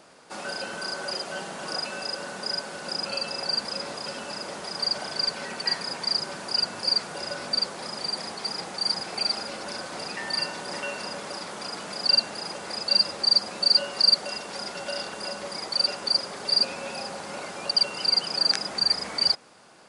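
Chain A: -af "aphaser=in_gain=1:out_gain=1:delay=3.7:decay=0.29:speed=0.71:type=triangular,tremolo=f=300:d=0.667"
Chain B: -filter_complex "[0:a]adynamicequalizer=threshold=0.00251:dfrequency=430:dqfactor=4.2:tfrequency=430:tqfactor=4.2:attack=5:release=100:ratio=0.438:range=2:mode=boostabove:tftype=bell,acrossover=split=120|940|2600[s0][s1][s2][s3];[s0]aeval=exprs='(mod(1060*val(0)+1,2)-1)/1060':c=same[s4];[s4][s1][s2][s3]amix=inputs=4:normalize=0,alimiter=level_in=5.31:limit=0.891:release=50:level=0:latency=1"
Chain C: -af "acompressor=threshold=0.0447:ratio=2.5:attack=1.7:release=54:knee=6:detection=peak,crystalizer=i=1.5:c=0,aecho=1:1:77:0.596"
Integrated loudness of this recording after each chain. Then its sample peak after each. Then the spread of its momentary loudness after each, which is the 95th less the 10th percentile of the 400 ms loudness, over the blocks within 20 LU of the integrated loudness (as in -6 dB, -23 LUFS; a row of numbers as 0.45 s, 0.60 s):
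-28.0 LUFS, -13.5 LUFS, -25.5 LUFS; -6.5 dBFS, -1.0 dBFS, -5.0 dBFS; 14 LU, 10 LU, 8 LU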